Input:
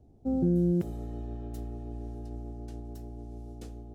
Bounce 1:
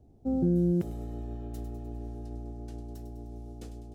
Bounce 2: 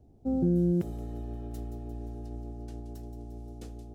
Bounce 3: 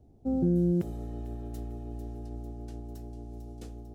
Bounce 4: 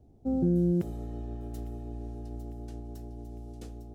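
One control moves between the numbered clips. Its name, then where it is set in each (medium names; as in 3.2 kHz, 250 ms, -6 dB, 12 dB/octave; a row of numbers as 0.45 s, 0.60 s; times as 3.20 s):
feedback echo behind a high-pass, time: 101 ms, 175 ms, 448 ms, 853 ms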